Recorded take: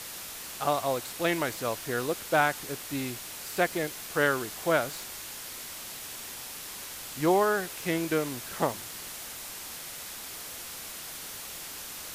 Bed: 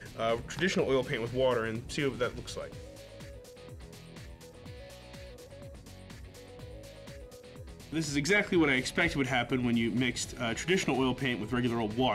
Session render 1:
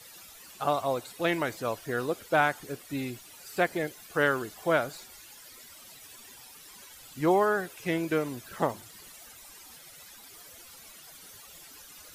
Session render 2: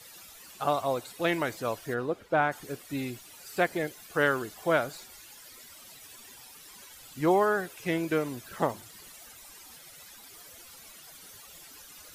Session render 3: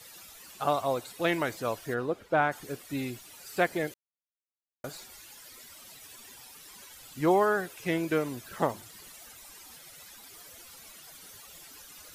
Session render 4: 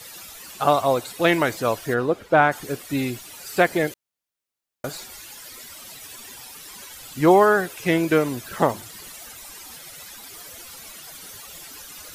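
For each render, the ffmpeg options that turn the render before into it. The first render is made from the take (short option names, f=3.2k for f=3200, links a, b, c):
-af "afftdn=nr=14:nf=-41"
-filter_complex "[0:a]asplit=3[a][b][c];[a]afade=t=out:st=1.93:d=0.02[d];[b]lowpass=f=1.5k:p=1,afade=t=in:st=1.93:d=0.02,afade=t=out:st=2.51:d=0.02[e];[c]afade=t=in:st=2.51:d=0.02[f];[d][e][f]amix=inputs=3:normalize=0"
-filter_complex "[0:a]asplit=3[a][b][c];[a]atrim=end=3.94,asetpts=PTS-STARTPTS,afade=t=out:st=3.936:d=0.004:c=hsin[d];[b]atrim=start=3.94:end=4.84,asetpts=PTS-STARTPTS,volume=0[e];[c]atrim=start=4.84,asetpts=PTS-STARTPTS,afade=t=in:d=0.004:c=hsin[f];[d][e][f]concat=n=3:v=0:a=1"
-af "volume=9dB,alimiter=limit=-3dB:level=0:latency=1"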